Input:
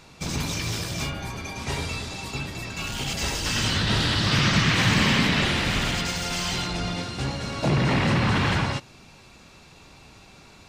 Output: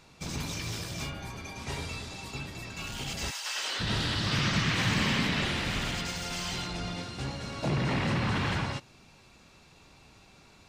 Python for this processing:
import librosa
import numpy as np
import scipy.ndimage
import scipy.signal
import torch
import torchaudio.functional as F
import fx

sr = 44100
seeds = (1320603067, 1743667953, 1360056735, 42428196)

y = fx.highpass(x, sr, hz=fx.line((3.3, 950.0), (3.79, 360.0)), slope=24, at=(3.3, 3.79), fade=0.02)
y = y * librosa.db_to_amplitude(-7.0)